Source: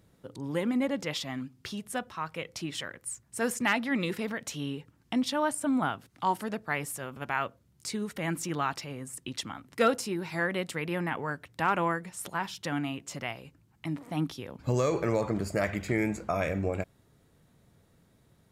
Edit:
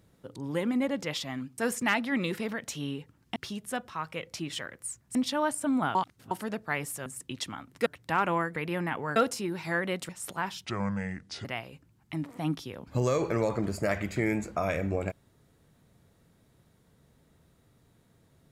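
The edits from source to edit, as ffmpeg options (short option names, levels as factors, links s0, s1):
-filter_complex "[0:a]asplit=13[s0][s1][s2][s3][s4][s5][s6][s7][s8][s9][s10][s11][s12];[s0]atrim=end=1.582[s13];[s1]atrim=start=3.368:end=5.152[s14];[s2]atrim=start=1.578:end=3.372[s15];[s3]atrim=start=5.148:end=5.952[s16];[s4]atrim=start=5.948:end=6.312,asetpts=PTS-STARTPTS,areverse[s17];[s5]atrim=start=6.308:end=7.062[s18];[s6]atrim=start=9.028:end=9.832[s19];[s7]atrim=start=11.358:end=12.062[s20];[s8]atrim=start=10.758:end=11.362[s21];[s9]atrim=start=9.828:end=10.762[s22];[s10]atrim=start=12.058:end=12.624[s23];[s11]atrim=start=12.62:end=13.17,asetpts=PTS-STARTPTS,asetrate=30429,aresample=44100,atrim=end_sample=35152,asetpts=PTS-STARTPTS[s24];[s12]atrim=start=13.166[s25];[s13][s14]acrossfade=d=0.004:c1=hsin:c2=hsin[s26];[s26][s15]acrossfade=d=0.004:c1=hsin:c2=hsin[s27];[s27][s16]acrossfade=d=0.004:c1=hsin:c2=hsin[s28];[s28][s17]acrossfade=d=0.004:c1=hsin:c2=hsin[s29];[s29][s18]acrossfade=d=0.004:c1=hsin:c2=hsin[s30];[s30][s19]acrossfade=d=0.004:c1=hsin:c2=hsin[s31];[s31][s20]acrossfade=d=0.004:c1=hsin:c2=hsin[s32];[s32][s21]acrossfade=d=0.004:c1=hsin:c2=hsin[s33];[s33][s22]acrossfade=d=0.004:c1=hsin:c2=hsin[s34];[s34][s23]acrossfade=d=0.004:c1=hsin:c2=hsin[s35];[s35][s24]acrossfade=d=0.004:c1=hsin:c2=hsin[s36];[s36][s25]acrossfade=d=0.004:c1=hsin:c2=hsin"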